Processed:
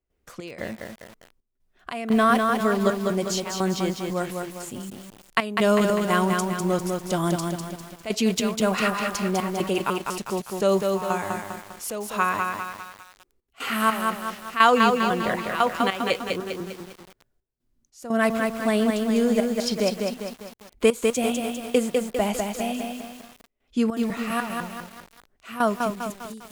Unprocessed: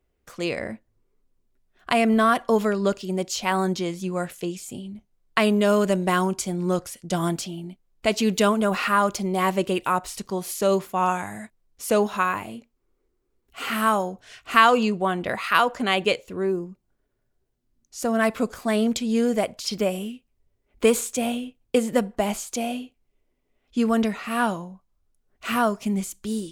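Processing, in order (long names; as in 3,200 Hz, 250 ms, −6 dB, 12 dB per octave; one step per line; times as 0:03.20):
fade-out on the ending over 0.75 s
gate pattern ".xxx..xxx." 150 BPM −12 dB
feedback echo at a low word length 200 ms, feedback 55%, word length 7 bits, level −3.5 dB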